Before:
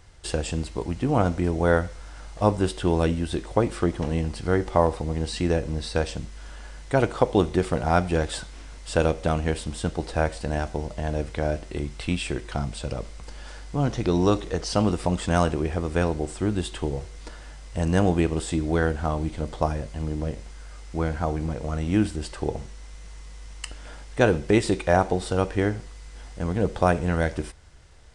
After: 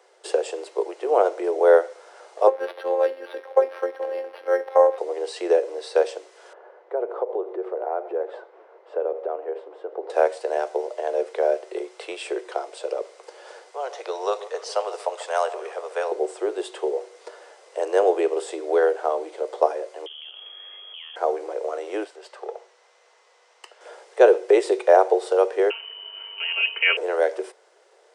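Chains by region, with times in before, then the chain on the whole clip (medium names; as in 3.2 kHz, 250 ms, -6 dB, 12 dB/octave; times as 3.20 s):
2.47–4.98 s: peaking EQ 1.7 kHz +9 dB 0.3 oct + robot voice 265 Hz + decimation joined by straight lines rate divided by 6×
6.53–10.10 s: low-pass 1.2 kHz + compression, threshold -25 dBFS
13.70–16.11 s: Bessel high-pass 780 Hz, order 8 + echo whose repeats swap between lows and highs 140 ms, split 1.1 kHz, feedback 61%, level -14 dB
20.06–21.16 s: frequency inversion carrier 3.3 kHz + compression 12:1, threshold -32 dBFS
22.04–23.81 s: high-pass 670 Hz + valve stage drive 24 dB, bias 0.6 + distance through air 60 m
25.70–26.97 s: comb 4.3 ms, depth 91% + frequency inversion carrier 3 kHz
whole clip: steep high-pass 370 Hz 72 dB/octave; peaking EQ 480 Hz +13 dB 2.1 oct; trim -4.5 dB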